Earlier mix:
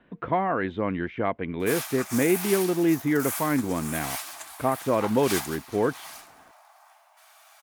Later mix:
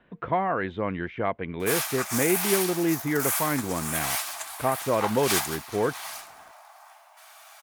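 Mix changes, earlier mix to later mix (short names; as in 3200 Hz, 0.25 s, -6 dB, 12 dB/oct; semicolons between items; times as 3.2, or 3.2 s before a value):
background +5.0 dB; master: add bell 270 Hz -5 dB 0.76 oct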